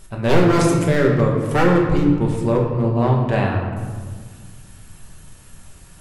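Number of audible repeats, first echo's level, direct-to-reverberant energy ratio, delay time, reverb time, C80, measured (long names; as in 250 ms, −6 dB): no echo audible, no echo audible, −1.5 dB, no echo audible, 1.6 s, 5.5 dB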